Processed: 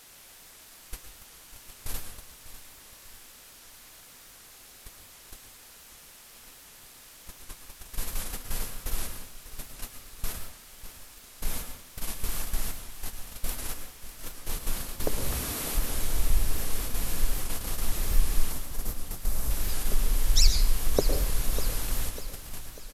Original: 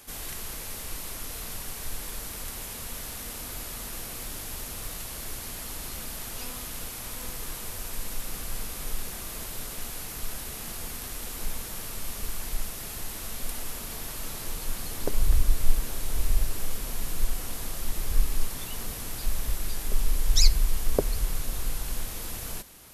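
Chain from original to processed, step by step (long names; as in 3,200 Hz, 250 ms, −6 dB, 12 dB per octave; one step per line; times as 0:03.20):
noise gate −30 dBFS, range −30 dB
0:15.15–0:15.74: high-pass filter 88 Hz → 240 Hz 12 dB per octave
0:18.52–0:19.51: parametric band 2,700 Hz −8.5 dB 1.6 octaves
in parallel at +1 dB: downward compressor, threshold −30 dBFS, peak gain reduction 18.5 dB
on the sum: bit-depth reduction 8 bits, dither triangular
repeating echo 598 ms, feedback 51%, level −14 dB
on a send at −6.5 dB: convolution reverb RT60 0.55 s, pre-delay 103 ms
on the sum: downsampling to 32,000 Hz
wow of a warped record 78 rpm, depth 100 cents
level −2.5 dB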